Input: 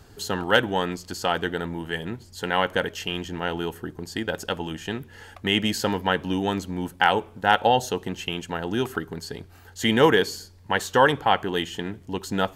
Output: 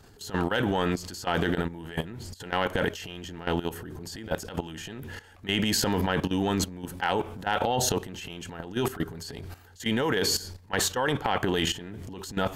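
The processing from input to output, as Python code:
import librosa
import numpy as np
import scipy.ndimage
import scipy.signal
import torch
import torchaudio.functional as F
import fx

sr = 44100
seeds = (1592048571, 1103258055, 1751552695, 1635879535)

y = fx.transient(x, sr, attack_db=-10, sustain_db=10)
y = fx.level_steps(y, sr, step_db=14)
y = y * librosa.db_to_amplitude(2.5)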